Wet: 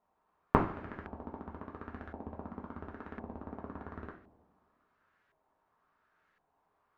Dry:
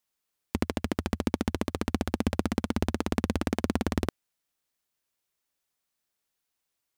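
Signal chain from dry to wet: in parallel at 0 dB: limiter -17.5 dBFS, peak gain reduction 8.5 dB; on the sum: flipped gate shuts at -15 dBFS, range -27 dB; two-slope reverb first 0.4 s, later 1.9 s, from -18 dB, DRR -1 dB; LFO low-pass saw up 0.94 Hz 800–1700 Hz; gain +4 dB

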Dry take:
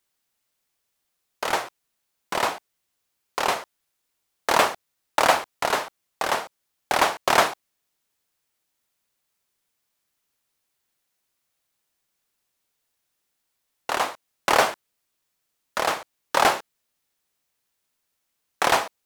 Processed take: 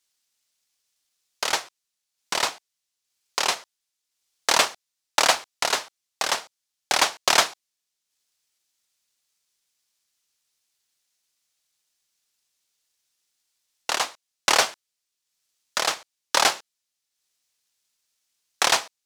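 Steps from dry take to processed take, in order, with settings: bell 5600 Hz +14 dB 2.5 oct; transient shaper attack +4 dB, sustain -6 dB; gain -7.5 dB

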